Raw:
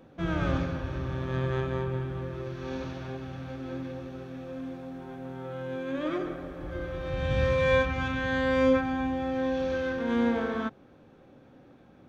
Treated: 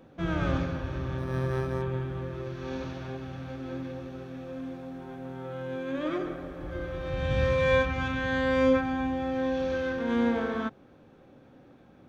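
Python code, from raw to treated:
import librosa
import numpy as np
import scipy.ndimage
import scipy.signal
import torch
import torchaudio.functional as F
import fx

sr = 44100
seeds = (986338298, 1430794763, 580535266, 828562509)

y = fx.resample_linear(x, sr, factor=6, at=(1.18, 1.82))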